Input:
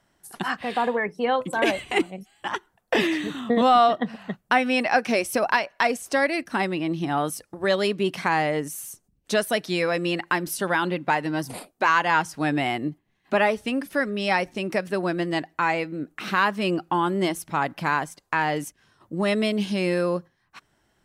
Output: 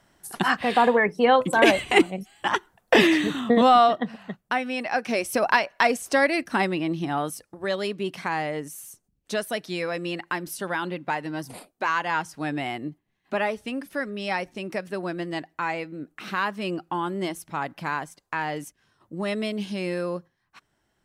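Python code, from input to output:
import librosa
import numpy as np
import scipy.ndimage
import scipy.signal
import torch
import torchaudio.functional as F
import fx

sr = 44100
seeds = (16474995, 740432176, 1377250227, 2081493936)

y = fx.gain(x, sr, db=fx.line((3.2, 5.0), (4.76, -7.0), (5.53, 1.5), (6.59, 1.5), (7.61, -5.0)))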